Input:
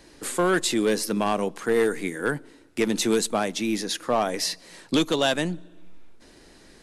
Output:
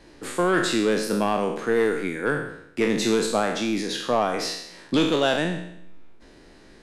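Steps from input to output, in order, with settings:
peak hold with a decay on every bin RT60 0.75 s
low-pass filter 3,000 Hz 6 dB per octave

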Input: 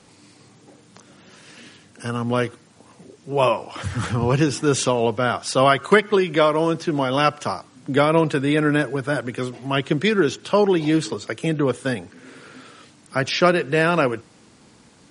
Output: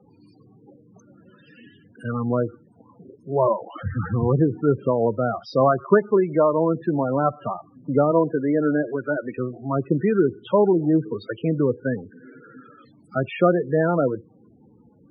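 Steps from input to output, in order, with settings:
0:08.11–0:09.39: band-pass filter 210–7,400 Hz
treble cut that deepens with the level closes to 1,200 Hz, closed at −17 dBFS
spectral peaks only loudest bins 16

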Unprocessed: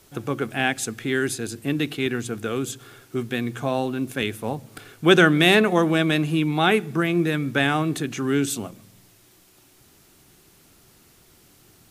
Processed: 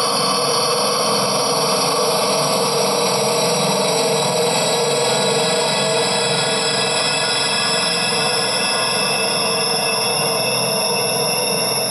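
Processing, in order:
frequency axis turned over on the octave scale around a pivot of 1,300 Hz
extreme stretch with random phases 10×, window 1.00 s, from 0:05.11
brickwall limiter −17 dBFS, peak gain reduction 11 dB
level +8.5 dB

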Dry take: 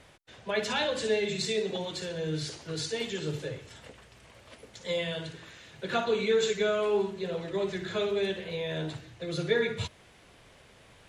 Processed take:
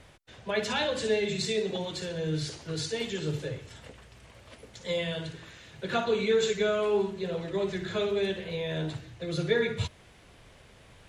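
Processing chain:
low-shelf EQ 130 Hz +7 dB

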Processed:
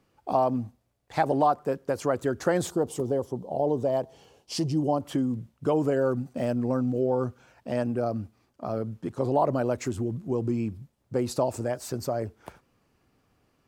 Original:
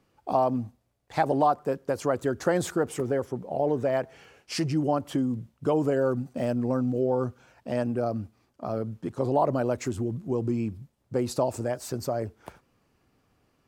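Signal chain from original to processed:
0:02.67–0:05.01: flat-topped bell 1,800 Hz −12.5 dB 1.2 octaves

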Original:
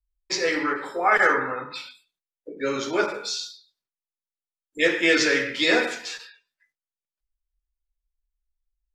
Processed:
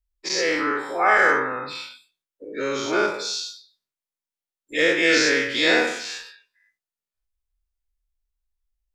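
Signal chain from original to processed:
every bin's largest magnitude spread in time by 120 ms
level −3.5 dB

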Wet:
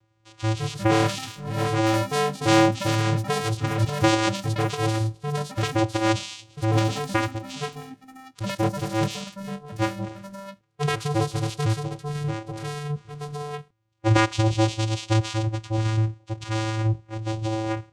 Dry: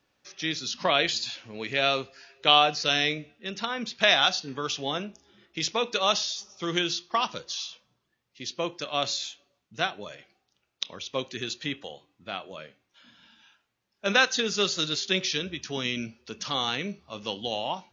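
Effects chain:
channel vocoder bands 4, square 110 Hz
delay with pitch and tempo change per echo 274 ms, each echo +5 semitones, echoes 3, each echo −6 dB
level +4.5 dB

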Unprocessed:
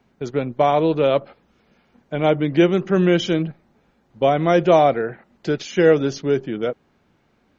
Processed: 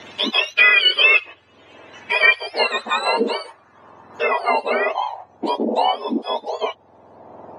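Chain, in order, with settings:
frequency axis turned over on the octave scale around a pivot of 1,200 Hz
low-pass filter sweep 2,900 Hz → 790 Hz, 0:01.65–0:04.69
multiband upward and downward compressor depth 70%
level +6 dB

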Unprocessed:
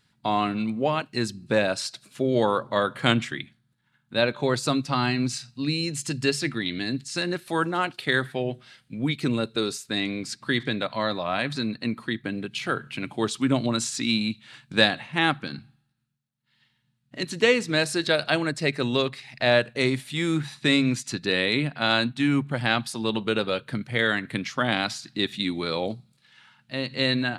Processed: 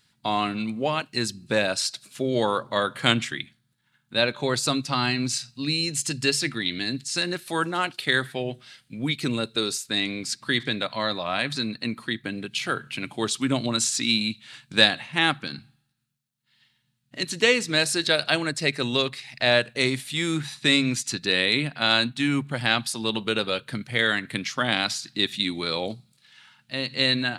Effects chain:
high-shelf EQ 2,300 Hz +8.5 dB
level −2 dB

